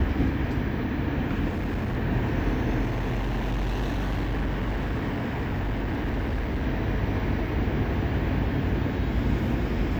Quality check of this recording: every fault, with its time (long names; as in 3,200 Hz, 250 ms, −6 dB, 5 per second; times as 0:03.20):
0:01.49–0:01.97: clipping −24.5 dBFS
0:02.82–0:06.67: clipping −23.5 dBFS